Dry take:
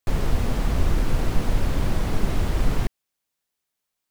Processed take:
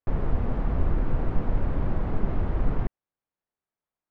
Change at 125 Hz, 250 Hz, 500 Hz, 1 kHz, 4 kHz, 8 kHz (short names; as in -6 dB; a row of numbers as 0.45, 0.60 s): -3.0 dB, -3.0 dB, -3.0 dB, -4.0 dB, under -15 dB, under -30 dB